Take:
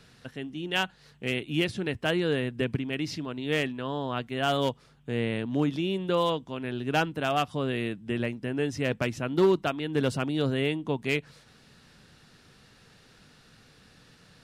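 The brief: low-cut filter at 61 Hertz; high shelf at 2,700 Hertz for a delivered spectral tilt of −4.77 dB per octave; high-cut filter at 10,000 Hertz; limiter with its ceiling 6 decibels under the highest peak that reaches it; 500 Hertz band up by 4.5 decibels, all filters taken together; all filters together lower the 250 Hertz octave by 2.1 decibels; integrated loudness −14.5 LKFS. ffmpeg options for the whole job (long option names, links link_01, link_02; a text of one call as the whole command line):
ffmpeg -i in.wav -af "highpass=61,lowpass=10000,equalizer=frequency=250:width_type=o:gain=-6.5,equalizer=frequency=500:width_type=o:gain=8,highshelf=frequency=2700:gain=-6,volume=14.5dB,alimiter=limit=-2dB:level=0:latency=1" out.wav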